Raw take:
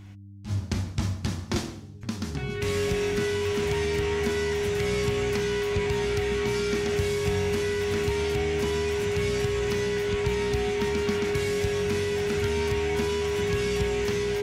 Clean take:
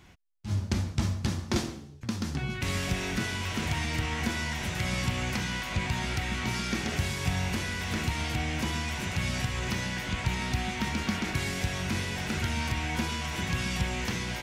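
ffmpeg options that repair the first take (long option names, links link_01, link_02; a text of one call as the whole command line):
ffmpeg -i in.wav -af "bandreject=frequency=99.4:width_type=h:width=4,bandreject=frequency=198.8:width_type=h:width=4,bandreject=frequency=298.2:width_type=h:width=4,bandreject=frequency=410:width=30" out.wav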